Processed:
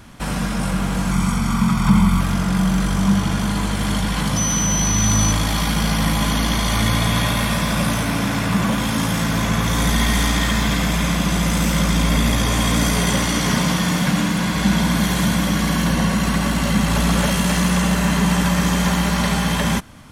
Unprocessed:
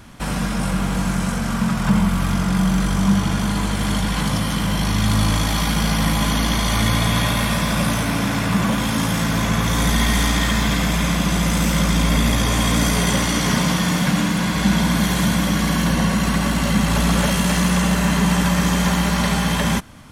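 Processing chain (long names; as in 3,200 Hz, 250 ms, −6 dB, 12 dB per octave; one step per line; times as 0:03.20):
0:01.11–0:02.21: comb filter 0.9 ms, depth 58%
0:04.36–0:05.31: steady tone 6,000 Hz −20 dBFS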